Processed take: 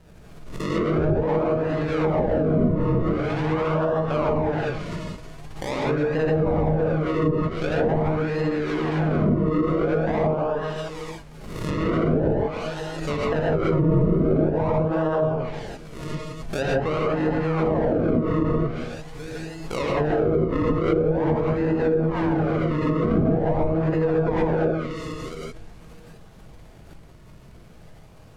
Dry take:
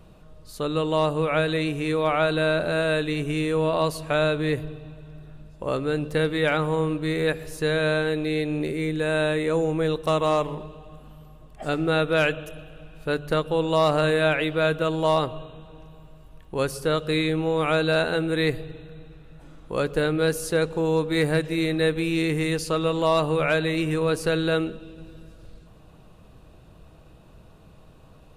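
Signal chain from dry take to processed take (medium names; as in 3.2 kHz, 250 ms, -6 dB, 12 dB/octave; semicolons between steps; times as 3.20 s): chunks repeated in reverse 650 ms, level -12 dB; decimation with a swept rate 38×, swing 100% 0.45 Hz; gated-style reverb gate 190 ms rising, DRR -4.5 dB; low-pass that closes with the level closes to 560 Hz, closed at -12 dBFS; swell ahead of each attack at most 50 dB/s; trim -3.5 dB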